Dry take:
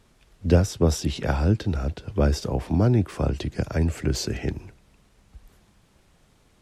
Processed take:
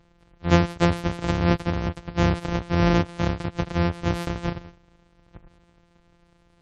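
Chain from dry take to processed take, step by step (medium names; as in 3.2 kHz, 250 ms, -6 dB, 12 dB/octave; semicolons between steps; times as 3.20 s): sorted samples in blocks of 256 samples; spectral gate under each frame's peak -30 dB strong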